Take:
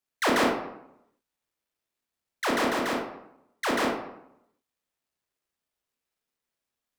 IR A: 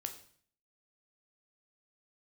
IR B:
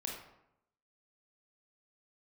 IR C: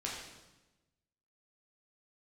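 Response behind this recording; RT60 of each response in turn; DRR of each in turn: B; 0.55, 0.80, 1.1 s; 5.5, -1.0, -4.5 dB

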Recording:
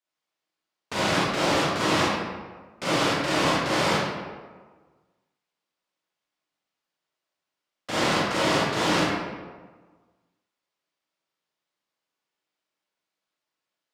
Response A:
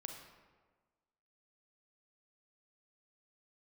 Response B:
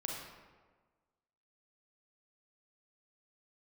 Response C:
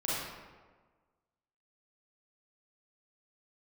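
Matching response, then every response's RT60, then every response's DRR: C; 1.4, 1.4, 1.4 s; 3.0, -1.5, -8.5 dB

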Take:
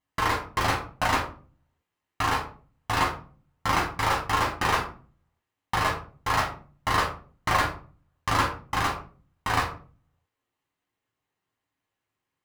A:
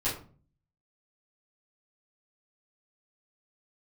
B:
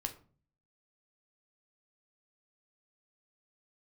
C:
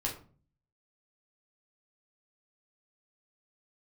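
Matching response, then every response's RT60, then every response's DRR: C; 0.40, 0.40, 0.40 s; -12.0, 5.0, -2.5 dB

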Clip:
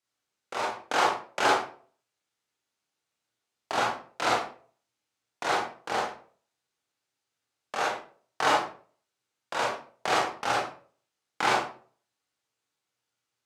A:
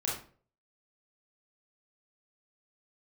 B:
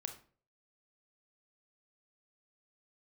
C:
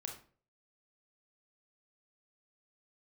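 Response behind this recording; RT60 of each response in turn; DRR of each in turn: A; 0.45, 0.45, 0.45 s; -5.0, 6.0, 1.5 dB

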